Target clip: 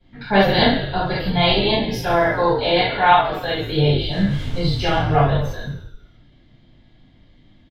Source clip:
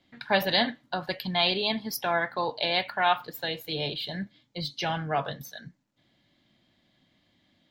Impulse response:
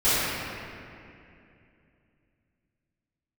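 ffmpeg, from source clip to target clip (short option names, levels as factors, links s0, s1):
-filter_complex "[0:a]asettb=1/sr,asplit=3[s0][s1][s2];[s0]atrim=end=4.114[s3];[s1]atrim=start=4.11:end=4.95,asetpts=PTS-STARTPTS,afade=t=in:d=0.004:c=qsin,afade=t=out:st=0.836:d=0.004:c=qsin,aeval=exprs='val(0)+0.5*0.0126*sgn(val(0))':c=same[s4];[s2]atrim=start=4.946[s5];[s3][s4]acrossfade=d=0.004:c1=hsin:c2=qsin[s6];[s6][s5]acrossfade=d=0.004:c1=qsin:c2=hsin,aemphasis=mode=reproduction:type=bsi,asplit=8[s7][s8][s9][s10][s11][s12][s13][s14];[s8]adelay=89,afreqshift=-50,volume=0.316[s15];[s9]adelay=178,afreqshift=-100,volume=0.18[s16];[s10]adelay=267,afreqshift=-150,volume=0.102[s17];[s11]adelay=356,afreqshift=-200,volume=0.0589[s18];[s12]adelay=445,afreqshift=-250,volume=0.0335[s19];[s13]adelay=534,afreqshift=-300,volume=0.0191[s20];[s14]adelay=623,afreqshift=-350,volume=0.0108[s21];[s7][s15][s16][s17][s18][s19][s20][s21]amix=inputs=8:normalize=0[s22];[1:a]atrim=start_sample=2205,atrim=end_sample=3969,asetrate=43218,aresample=44100[s23];[s22][s23]afir=irnorm=-1:irlink=0,volume=0.562"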